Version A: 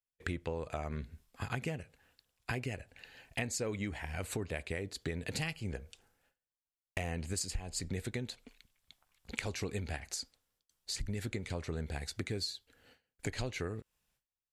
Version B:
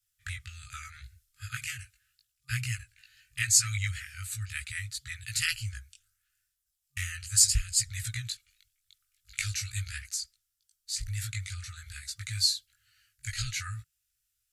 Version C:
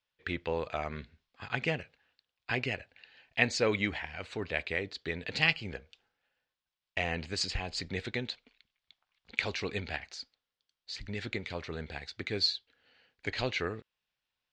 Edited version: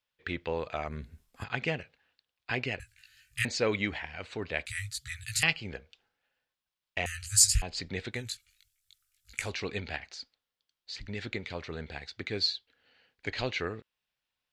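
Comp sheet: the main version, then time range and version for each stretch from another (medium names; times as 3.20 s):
C
0.88–1.44 s: from A
2.80–3.45 s: from B
4.66–5.43 s: from B
7.06–7.62 s: from B
8.22–9.41 s: from B, crossfade 0.24 s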